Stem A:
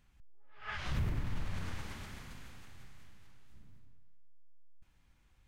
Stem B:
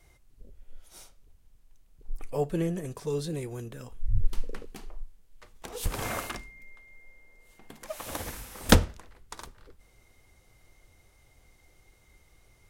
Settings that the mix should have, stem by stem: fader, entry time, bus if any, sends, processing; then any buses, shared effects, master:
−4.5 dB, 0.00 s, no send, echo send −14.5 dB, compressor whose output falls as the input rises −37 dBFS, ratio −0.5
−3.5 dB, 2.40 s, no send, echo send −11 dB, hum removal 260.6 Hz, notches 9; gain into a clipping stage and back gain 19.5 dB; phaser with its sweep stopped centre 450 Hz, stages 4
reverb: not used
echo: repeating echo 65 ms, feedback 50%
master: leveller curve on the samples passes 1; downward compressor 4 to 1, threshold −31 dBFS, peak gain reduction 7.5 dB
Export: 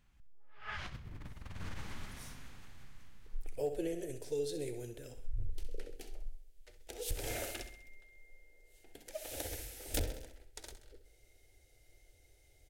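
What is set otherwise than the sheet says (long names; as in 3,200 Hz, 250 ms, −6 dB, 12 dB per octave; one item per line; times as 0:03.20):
stem B: entry 2.40 s → 1.25 s
master: missing leveller curve on the samples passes 1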